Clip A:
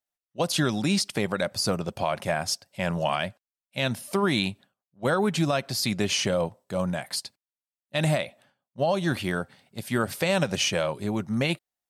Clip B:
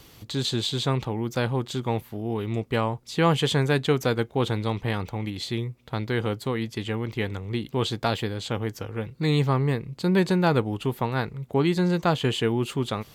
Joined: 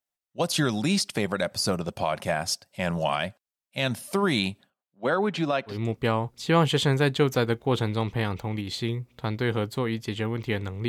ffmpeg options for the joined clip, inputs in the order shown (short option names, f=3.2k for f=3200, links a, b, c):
-filter_complex "[0:a]asettb=1/sr,asplit=3[a][b][c];[a]atrim=end=4.704[d];[b]atrim=start=4.7:end=5.78,asetpts=PTS-STARTPTS,afade=t=in:d=0.004:c=qsin,afade=t=out:st=1.076:d=0.004:c=qsin,acrossover=split=170 4500:gain=0.141 1 0.141[e][f][g];[e][f][g]amix=inputs=3:normalize=0[h];[c]atrim=start=5.776[i];[d][h]acrossfade=d=0.004:c1=hsin:c2=qsin[j];[j][i]acrossfade=d=0.004:c1=qsin:c2=hsin,apad=whole_dur=10.88,atrim=end=10.88,atrim=end=5.78,asetpts=PTS-STARTPTS[k];[1:a]atrim=start=2.35:end=7.57,asetpts=PTS-STARTPTS[l];[k][l]acrossfade=d=0.12:c1=tri:c2=tri"